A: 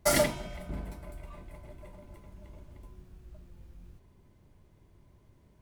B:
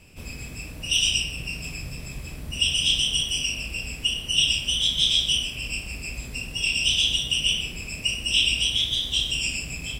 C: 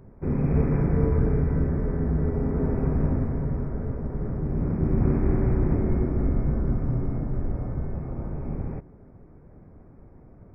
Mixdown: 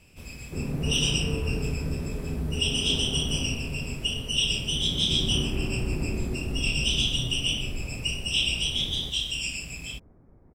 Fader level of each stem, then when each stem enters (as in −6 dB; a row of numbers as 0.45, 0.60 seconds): muted, −4.5 dB, −6.5 dB; muted, 0.00 s, 0.30 s